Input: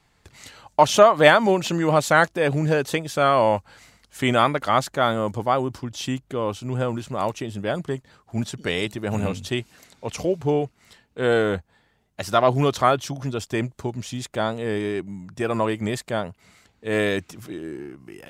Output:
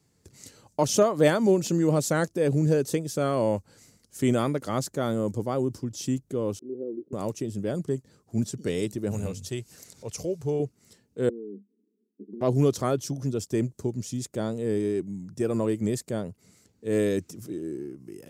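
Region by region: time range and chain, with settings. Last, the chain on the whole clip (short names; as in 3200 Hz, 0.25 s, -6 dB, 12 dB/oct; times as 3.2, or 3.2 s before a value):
6.59–7.13 Butterworth band-pass 360 Hz, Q 2.2 + mismatched tape noise reduction decoder only
9.11–10.6 bell 260 Hz -9.5 dB 1.5 oct + upward compressor, threshold -35 dBFS
11.29–12.41 Chebyshev band-pass 200–440 Hz, order 5 + compressor, threshold -35 dBFS
whole clip: HPF 90 Hz; band shelf 1600 Hz -13.5 dB 2.9 oct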